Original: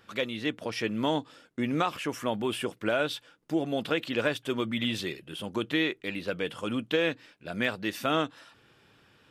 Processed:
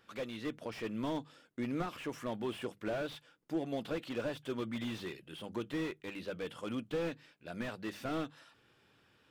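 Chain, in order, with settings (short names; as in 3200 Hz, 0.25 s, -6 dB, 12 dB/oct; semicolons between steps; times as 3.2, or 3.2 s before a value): notches 50/100/150/200 Hz; slew limiter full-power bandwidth 35 Hz; gain -7 dB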